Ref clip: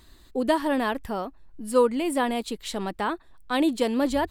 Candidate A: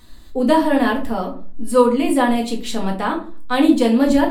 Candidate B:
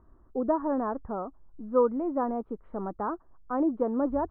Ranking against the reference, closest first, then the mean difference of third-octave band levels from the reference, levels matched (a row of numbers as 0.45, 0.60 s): A, B; 4.5, 8.5 dB